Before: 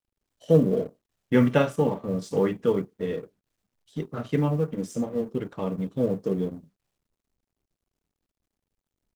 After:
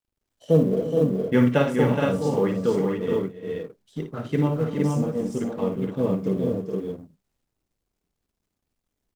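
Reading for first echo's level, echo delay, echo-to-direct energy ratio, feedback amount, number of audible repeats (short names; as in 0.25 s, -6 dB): -8.5 dB, 57 ms, -0.5 dB, no steady repeat, 5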